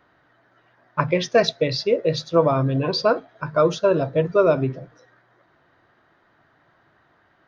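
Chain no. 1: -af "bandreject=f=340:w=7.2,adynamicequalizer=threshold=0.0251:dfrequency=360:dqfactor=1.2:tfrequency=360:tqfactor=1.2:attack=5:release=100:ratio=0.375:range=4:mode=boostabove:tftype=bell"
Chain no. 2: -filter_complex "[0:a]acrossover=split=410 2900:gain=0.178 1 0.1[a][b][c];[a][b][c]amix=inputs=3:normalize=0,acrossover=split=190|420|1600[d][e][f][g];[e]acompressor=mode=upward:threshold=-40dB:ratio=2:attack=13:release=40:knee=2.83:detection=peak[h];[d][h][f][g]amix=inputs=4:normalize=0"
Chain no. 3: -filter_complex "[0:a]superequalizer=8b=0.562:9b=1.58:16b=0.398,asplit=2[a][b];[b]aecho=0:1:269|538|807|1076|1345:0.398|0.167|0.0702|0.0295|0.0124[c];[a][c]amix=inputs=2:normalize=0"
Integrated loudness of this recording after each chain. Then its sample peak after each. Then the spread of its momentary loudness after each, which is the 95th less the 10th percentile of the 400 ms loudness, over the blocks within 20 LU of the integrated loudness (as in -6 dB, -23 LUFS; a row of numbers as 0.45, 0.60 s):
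-17.5, -24.0, -21.5 LUFS; -1.5, -4.5, -2.5 dBFS; 9, 7, 9 LU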